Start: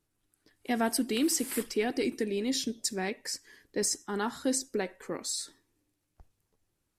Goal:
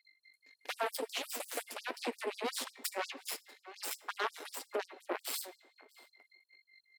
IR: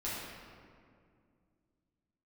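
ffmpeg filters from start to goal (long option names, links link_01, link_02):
-filter_complex "[0:a]aeval=exprs='val(0)+0.00251*sin(2*PI*2100*n/s)':channel_layout=same,acrossover=split=8500[link_01][link_02];[link_02]acompressor=threshold=-45dB:ratio=4:attack=1:release=60[link_03];[link_01][link_03]amix=inputs=2:normalize=0,equalizer=frequency=6200:width_type=o:width=0.26:gain=-15,acompressor=threshold=-31dB:ratio=12,flanger=delay=2.7:depth=3.4:regen=28:speed=0.33:shape=triangular,lowshelf=frequency=230:width_type=q:width=1.5:gain=6,flanger=delay=6.9:depth=7.7:regen=-24:speed=1.5:shape=triangular,aeval=exprs='0.0422*(cos(1*acos(clip(val(0)/0.0422,-1,1)))-cos(1*PI/2))+0.00299*(cos(3*acos(clip(val(0)/0.0422,-1,1)))-cos(3*PI/2))+0.00473*(cos(4*acos(clip(val(0)/0.0422,-1,1)))-cos(4*PI/2))+0.00335*(cos(7*acos(clip(val(0)/0.0422,-1,1)))-cos(7*PI/2))+0.00668*(cos(8*acos(clip(val(0)/0.0422,-1,1)))-cos(8*PI/2))':channel_layout=same,asplit=2[link_04][link_05];[link_05]adelay=641.4,volume=-16dB,highshelf=frequency=4000:gain=-14.4[link_06];[link_04][link_06]amix=inputs=2:normalize=0,asplit=2[link_07][link_08];[1:a]atrim=start_sample=2205,asetrate=61740,aresample=44100[link_09];[link_08][link_09]afir=irnorm=-1:irlink=0,volume=-16.5dB[link_10];[link_07][link_10]amix=inputs=2:normalize=0,afftfilt=real='re*gte(b*sr/1024,230*pow(4700/230,0.5+0.5*sin(2*PI*5.6*pts/sr)))':imag='im*gte(b*sr/1024,230*pow(4700/230,0.5+0.5*sin(2*PI*5.6*pts/sr)))':win_size=1024:overlap=0.75,volume=8.5dB"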